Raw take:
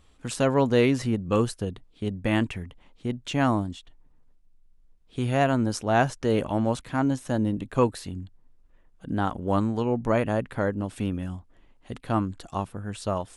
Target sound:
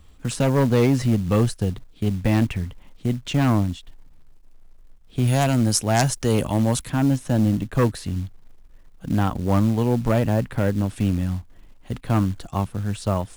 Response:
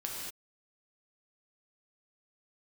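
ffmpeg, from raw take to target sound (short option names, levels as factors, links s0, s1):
-filter_complex "[0:a]acrossover=split=200[s0][s1];[s0]acontrast=90[s2];[s2][s1]amix=inputs=2:normalize=0,aeval=exprs='0.562*(cos(1*acos(clip(val(0)/0.562,-1,1)))-cos(1*PI/2))+0.0794*(cos(4*acos(clip(val(0)/0.562,-1,1)))-cos(4*PI/2))+0.158*(cos(5*acos(clip(val(0)/0.562,-1,1)))-cos(5*PI/2))+0.0355*(cos(6*acos(clip(val(0)/0.562,-1,1)))-cos(6*PI/2))+0.02*(cos(7*acos(clip(val(0)/0.562,-1,1)))-cos(7*PI/2))':c=same,asettb=1/sr,asplit=3[s3][s4][s5];[s3]atrim=end=5.274[s6];[s4]atrim=start=5.27:end=6.9,asetpts=PTS-STARTPTS,afade=t=in:d=0.004:c=qsin,afade=t=out:st=1.626:d=0.004:c=qsin,aemphasis=mode=production:type=75fm[s7];[s5]atrim=start=6.896[s8];[s6][s7]acrossfade=d=0.004:c1=hsin:c2=qsin[s9];[s9][s8]acrossfade=d=0.004:c1=qsin:c2=hsin,acrusher=bits=6:mode=log:mix=0:aa=0.000001,volume=0.668"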